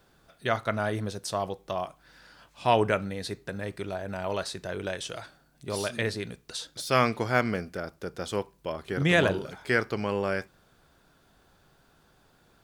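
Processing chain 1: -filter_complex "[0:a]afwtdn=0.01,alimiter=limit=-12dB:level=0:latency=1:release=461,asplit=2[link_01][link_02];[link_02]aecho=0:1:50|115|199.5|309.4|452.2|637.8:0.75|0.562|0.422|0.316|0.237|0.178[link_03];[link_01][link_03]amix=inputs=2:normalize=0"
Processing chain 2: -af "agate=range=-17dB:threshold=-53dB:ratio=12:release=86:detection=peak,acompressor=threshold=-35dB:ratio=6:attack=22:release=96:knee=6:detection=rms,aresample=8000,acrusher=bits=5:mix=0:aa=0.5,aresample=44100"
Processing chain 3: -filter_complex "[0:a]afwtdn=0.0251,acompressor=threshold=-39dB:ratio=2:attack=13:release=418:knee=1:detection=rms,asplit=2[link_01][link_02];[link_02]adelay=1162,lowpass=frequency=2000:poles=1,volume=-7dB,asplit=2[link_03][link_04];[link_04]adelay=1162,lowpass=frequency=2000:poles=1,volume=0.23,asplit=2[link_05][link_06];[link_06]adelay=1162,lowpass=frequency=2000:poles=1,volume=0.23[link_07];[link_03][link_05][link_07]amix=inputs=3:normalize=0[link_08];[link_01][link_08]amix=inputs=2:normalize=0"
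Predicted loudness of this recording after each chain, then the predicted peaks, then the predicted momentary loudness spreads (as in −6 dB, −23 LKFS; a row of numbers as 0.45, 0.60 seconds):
−28.0, −39.0, −40.0 LKFS; −9.5, −19.0, −19.5 dBFS; 12, 6, 11 LU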